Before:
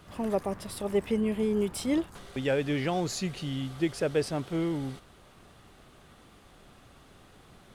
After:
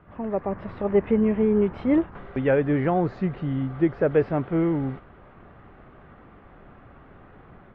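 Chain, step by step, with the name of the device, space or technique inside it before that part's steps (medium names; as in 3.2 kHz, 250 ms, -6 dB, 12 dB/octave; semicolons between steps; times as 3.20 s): 2.59–4.11 s: dynamic bell 2.6 kHz, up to -6 dB, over -52 dBFS, Q 2; action camera in a waterproof case (low-pass 2 kHz 24 dB/octave; level rider gain up to 7 dB; AAC 48 kbps 32 kHz)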